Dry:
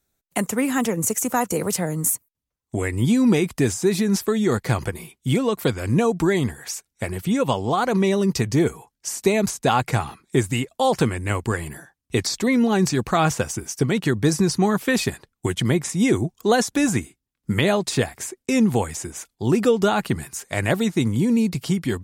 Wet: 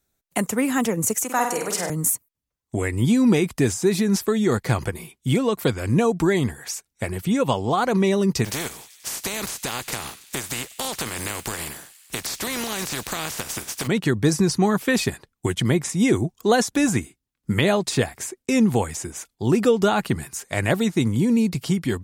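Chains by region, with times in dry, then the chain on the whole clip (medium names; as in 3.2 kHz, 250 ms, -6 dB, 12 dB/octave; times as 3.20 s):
1.24–1.90 s: frequency weighting A + flutter echo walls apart 8.6 m, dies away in 0.61 s
8.44–13.86 s: spectral contrast reduction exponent 0.38 + compression, threshold -24 dBFS + feedback echo behind a high-pass 96 ms, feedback 78%, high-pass 2.8 kHz, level -16.5 dB
whole clip: none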